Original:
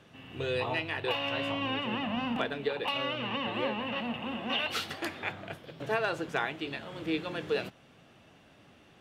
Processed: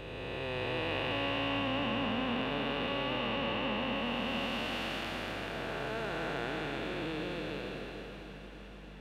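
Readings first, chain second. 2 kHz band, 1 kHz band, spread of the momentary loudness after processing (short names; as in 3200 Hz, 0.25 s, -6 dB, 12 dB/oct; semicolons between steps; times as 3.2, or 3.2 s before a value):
-2.0 dB, -1.5 dB, 11 LU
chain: time blur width 0.927 s; hum 50 Hz, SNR 15 dB; echo with dull and thin repeats by turns 0.155 s, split 1600 Hz, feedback 90%, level -14 dB; gain +2 dB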